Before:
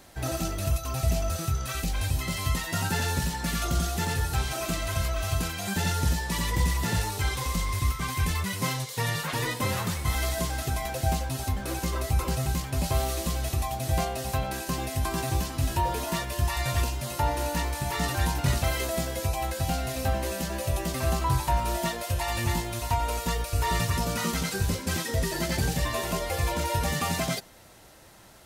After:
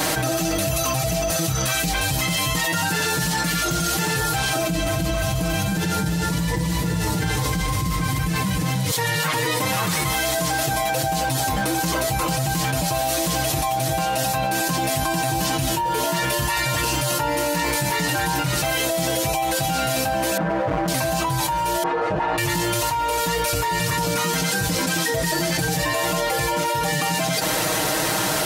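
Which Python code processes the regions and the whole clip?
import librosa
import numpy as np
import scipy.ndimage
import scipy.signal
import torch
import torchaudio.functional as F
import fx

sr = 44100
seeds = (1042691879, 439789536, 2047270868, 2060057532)

y = fx.chain(x, sr, fx.low_shelf(hz=370.0, db=12.0),
    fx.echo_single(ms=309, db=-3.0), at=(4.55, 8.91))
y = fx.chain(y, sr, fx.lowpass(hz=1600.0, slope=24),
    fx.overload_stage(gain_db=31.5), at=(20.37, 20.88))
y = fx.chain(y, sr, fx.lower_of_two(delay_ms=2.4),
    fx.lowpass(hz=1100.0, slope=12),
    fx.low_shelf(hz=160.0, db=-11.5), at=(21.83, 22.38))
y = fx.highpass(y, sr, hz=180.0, slope=6)
y = y + 0.98 * np.pad(y, (int(6.4 * sr / 1000.0), 0))[:len(y)]
y = fx.env_flatten(y, sr, amount_pct=100)
y = F.gain(torch.from_numpy(y), -7.0).numpy()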